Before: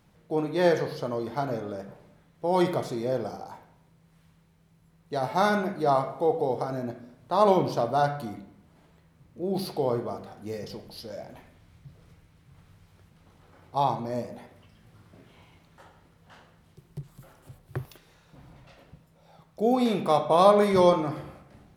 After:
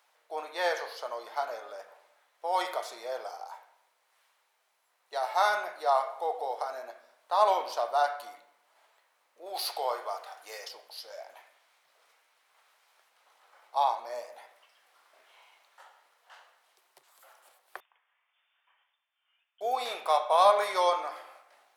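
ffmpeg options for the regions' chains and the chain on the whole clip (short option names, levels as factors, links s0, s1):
-filter_complex "[0:a]asettb=1/sr,asplit=3[s0][s1][s2];[s0]atrim=end=9.464[s3];[s1]atrim=start=9.46:end=10.69,asetpts=PTS-STARTPTS,afade=t=in:d=0.004:c=qsin,afade=t=out:st=1.226:d=0.004:c=qsin,highpass=f=700:p=1,acontrast=40[s4];[s2]atrim=start=10.686[s5];[s3][s4]acrossfade=d=0.004:c1=hsin:c2=qsin[s6];[s6][s5]acrossfade=d=0.004:c1=qsin:c2=hsin,asettb=1/sr,asplit=3[s7][s8][s9];[s7]atrim=end=17.804[s10];[s8]atrim=start=17.8:end=19.61,asetpts=PTS-STARTPTS,afade=t=in:d=0.004:c=qsin,afade=t=out:st=1.806:d=0.004:c=qsin,aderivative,lowpass=f=3100:t=q:w=0.5098,lowpass=f=3100:t=q:w=0.6013,lowpass=f=3100:t=q:w=0.9,lowpass=f=3100:t=q:w=2.563,afreqshift=-3700[s11];[s9]atrim=start=19.606[s12];[s10][s11]acrossfade=d=0.004:c1=hsin:c2=qsin[s13];[s13][s12]acrossfade=d=0.004:c1=qsin:c2=hsin,highpass=f=660:w=0.5412,highpass=f=660:w=1.3066,acontrast=29,volume=0.562"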